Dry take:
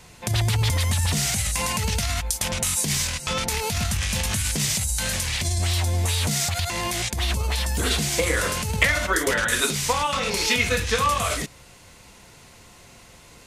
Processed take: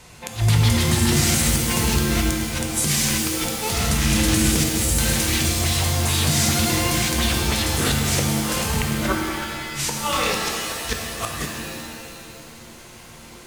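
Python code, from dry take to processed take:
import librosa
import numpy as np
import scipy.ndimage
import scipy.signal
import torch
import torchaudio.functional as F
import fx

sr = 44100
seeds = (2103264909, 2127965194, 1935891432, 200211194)

y = fx.cheby_harmonics(x, sr, harmonics=(5, 6), levels_db=(-30, -44), full_scale_db=-2.0)
y = fx.gate_flip(y, sr, shuts_db=-11.0, range_db=-28)
y = fx.rev_shimmer(y, sr, seeds[0], rt60_s=2.0, semitones=7, shimmer_db=-2, drr_db=1.5)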